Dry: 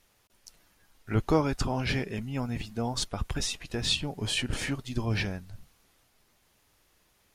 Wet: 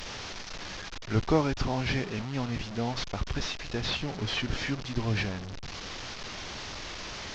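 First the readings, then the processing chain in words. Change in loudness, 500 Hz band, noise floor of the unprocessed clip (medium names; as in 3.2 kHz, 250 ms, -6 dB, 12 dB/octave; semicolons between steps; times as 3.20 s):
-2.0 dB, +0.5 dB, -68 dBFS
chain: one-bit delta coder 32 kbps, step -32.5 dBFS; Opus 256 kbps 48 kHz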